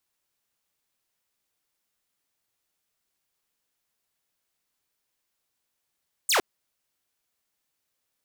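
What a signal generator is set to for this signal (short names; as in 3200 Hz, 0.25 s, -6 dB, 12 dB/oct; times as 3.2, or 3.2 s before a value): laser zap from 9500 Hz, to 310 Hz, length 0.11 s saw, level -16.5 dB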